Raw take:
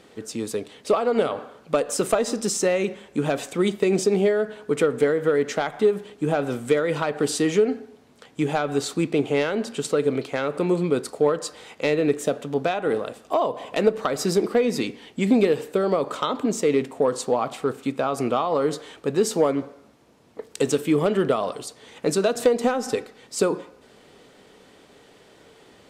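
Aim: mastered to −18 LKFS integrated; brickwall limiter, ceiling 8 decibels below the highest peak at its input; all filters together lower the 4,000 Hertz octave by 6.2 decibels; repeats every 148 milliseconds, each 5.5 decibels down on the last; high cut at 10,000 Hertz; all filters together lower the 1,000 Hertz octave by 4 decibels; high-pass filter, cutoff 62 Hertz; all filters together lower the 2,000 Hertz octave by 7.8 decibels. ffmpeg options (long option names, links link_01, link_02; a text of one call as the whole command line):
ffmpeg -i in.wav -af "highpass=62,lowpass=10000,equalizer=frequency=1000:width_type=o:gain=-3.5,equalizer=frequency=2000:width_type=o:gain=-8,equalizer=frequency=4000:width_type=o:gain=-5.5,alimiter=limit=-16dB:level=0:latency=1,aecho=1:1:148|296|444|592|740|888|1036:0.531|0.281|0.149|0.079|0.0419|0.0222|0.0118,volume=7.5dB" out.wav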